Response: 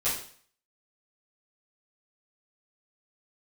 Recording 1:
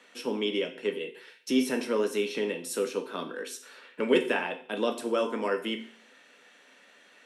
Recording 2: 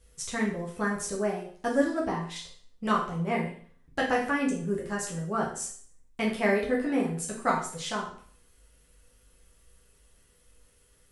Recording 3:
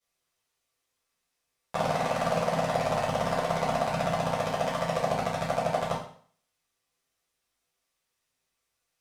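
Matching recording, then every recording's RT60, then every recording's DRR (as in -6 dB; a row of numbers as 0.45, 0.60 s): 3; 0.50, 0.50, 0.50 s; 5.5, -4.0, -12.0 dB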